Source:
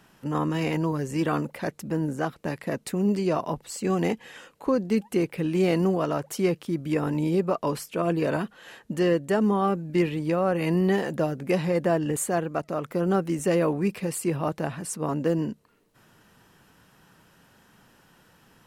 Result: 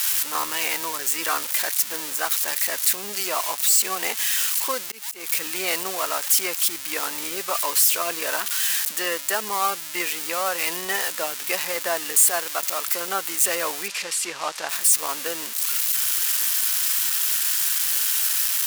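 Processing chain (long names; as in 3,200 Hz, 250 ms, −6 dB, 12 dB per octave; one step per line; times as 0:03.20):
spike at every zero crossing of −20.5 dBFS
high-pass filter 1,100 Hz 12 dB per octave
0:04.73–0:05.31: volume swells 233 ms
0:13.88–0:14.69: low-pass filter 6,100 Hz 12 dB per octave
level +7.5 dB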